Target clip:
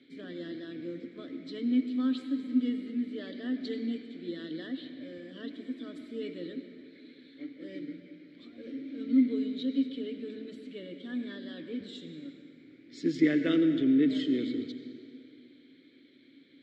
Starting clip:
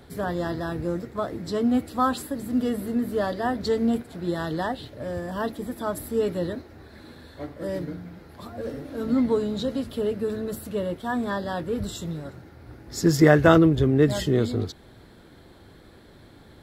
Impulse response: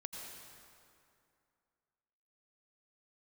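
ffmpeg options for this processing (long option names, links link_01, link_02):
-filter_complex "[0:a]asplit=3[link_01][link_02][link_03];[link_01]bandpass=frequency=270:width_type=q:width=8,volume=0dB[link_04];[link_02]bandpass=frequency=2290:width_type=q:width=8,volume=-6dB[link_05];[link_03]bandpass=frequency=3010:width_type=q:width=8,volume=-9dB[link_06];[link_04][link_05][link_06]amix=inputs=3:normalize=0,highpass=170,equalizer=frequency=210:width_type=q:width=4:gain=-8,equalizer=frequency=520:width_type=q:width=4:gain=4,equalizer=frequency=2300:width_type=q:width=4:gain=3,equalizer=frequency=4000:width_type=q:width=4:gain=7,lowpass=frequency=8600:width=0.5412,lowpass=frequency=8600:width=1.3066,asplit=2[link_07][link_08];[1:a]atrim=start_sample=2205[link_09];[link_08][link_09]afir=irnorm=-1:irlink=0,volume=0dB[link_10];[link_07][link_10]amix=inputs=2:normalize=0"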